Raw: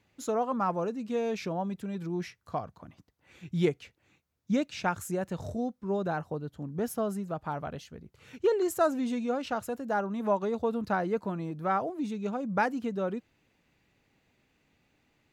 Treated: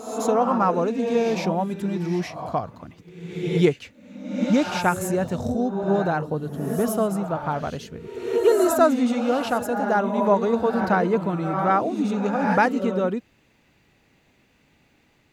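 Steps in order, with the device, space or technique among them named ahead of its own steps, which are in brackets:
reverse reverb (reversed playback; convolution reverb RT60 0.95 s, pre-delay 78 ms, DRR 5.5 dB; reversed playback)
level +8 dB

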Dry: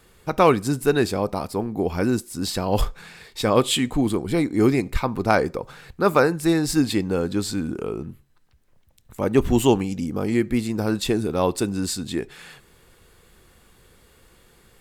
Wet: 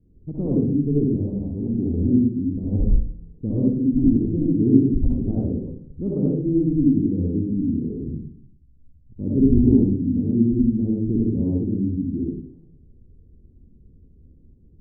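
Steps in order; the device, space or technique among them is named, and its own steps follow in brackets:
next room (low-pass filter 290 Hz 24 dB per octave; convolution reverb RT60 0.60 s, pre-delay 56 ms, DRR −4 dB)

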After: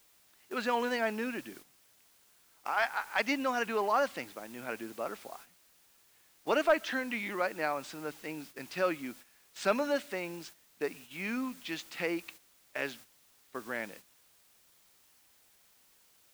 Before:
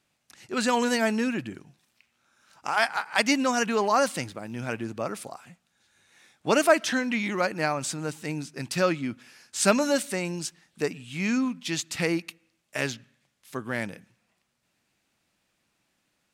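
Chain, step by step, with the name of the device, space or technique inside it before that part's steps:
tape answering machine (band-pass filter 310–3,300 Hz; soft clipping −9 dBFS, distortion −23 dB; tape wow and flutter 28 cents; white noise bed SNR 19 dB)
noise gate −45 dBFS, range −10 dB
level −5 dB

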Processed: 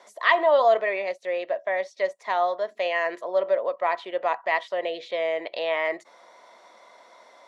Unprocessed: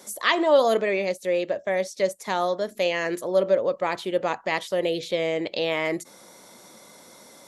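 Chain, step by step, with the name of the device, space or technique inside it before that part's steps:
tin-can telephone (band-pass filter 570–3,200 Hz; hollow resonant body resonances 680/1,000/1,900 Hz, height 9 dB, ringing for 30 ms)
level −1.5 dB

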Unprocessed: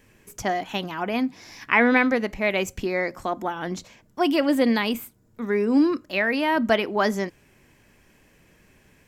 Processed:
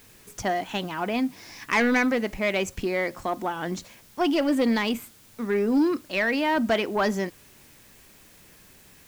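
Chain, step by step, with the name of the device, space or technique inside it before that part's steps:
compact cassette (soft clipping −15.5 dBFS, distortion −15 dB; low-pass filter 11,000 Hz; tape wow and flutter 22 cents; white noise bed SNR 28 dB)

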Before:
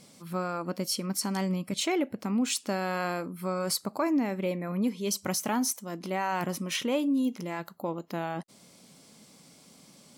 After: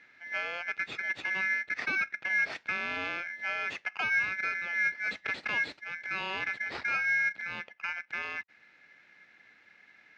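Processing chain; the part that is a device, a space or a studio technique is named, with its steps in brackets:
ring modulator pedal into a guitar cabinet (ring modulator with a square carrier 1,900 Hz; loudspeaker in its box 92–3,500 Hz, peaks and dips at 1,100 Hz −7 dB, 1,900 Hz +6 dB, 3,200 Hz −7 dB)
level −2.5 dB

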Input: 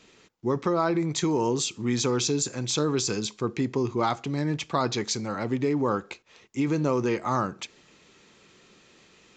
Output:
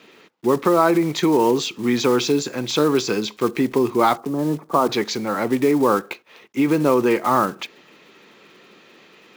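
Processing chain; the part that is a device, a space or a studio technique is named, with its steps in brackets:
0:04.17–0:04.89: elliptic band-pass filter 150–1,200 Hz, stop band 40 dB
early digital voice recorder (band-pass filter 220–3,600 Hz; one scale factor per block 5 bits)
level +9 dB

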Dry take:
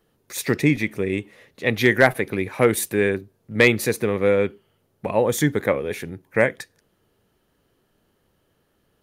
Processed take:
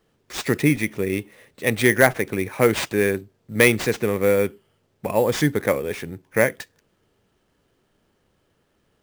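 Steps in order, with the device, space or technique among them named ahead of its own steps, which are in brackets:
early companding sampler (sample-rate reduction 12,000 Hz, jitter 0%; log-companded quantiser 8 bits)

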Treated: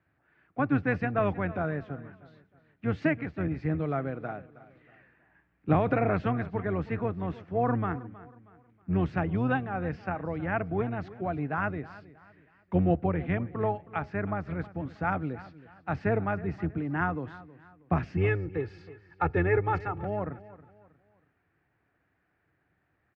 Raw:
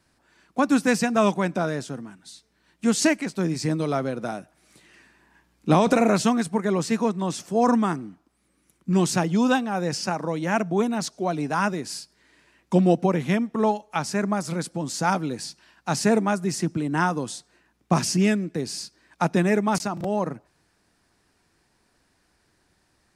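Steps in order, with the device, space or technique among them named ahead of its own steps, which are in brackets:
sub-octave bass pedal (sub-octave generator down 1 octave, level −5 dB; loudspeaker in its box 83–2,200 Hz, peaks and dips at 220 Hz −9 dB, 370 Hz −4 dB, 540 Hz −4 dB, 970 Hz −8 dB)
0:18.17–0:20.03: comb filter 2.3 ms, depth 93%
repeating echo 318 ms, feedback 36%, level −18 dB
level −3.5 dB

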